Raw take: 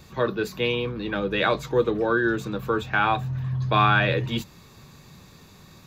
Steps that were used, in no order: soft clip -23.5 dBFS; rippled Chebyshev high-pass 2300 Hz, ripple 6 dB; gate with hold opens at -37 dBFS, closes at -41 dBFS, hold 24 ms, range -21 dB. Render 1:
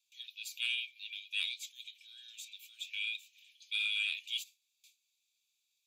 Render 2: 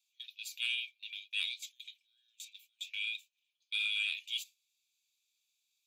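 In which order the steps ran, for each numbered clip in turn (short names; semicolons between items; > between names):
gate with hold > rippled Chebyshev high-pass > soft clip; rippled Chebyshev high-pass > soft clip > gate with hold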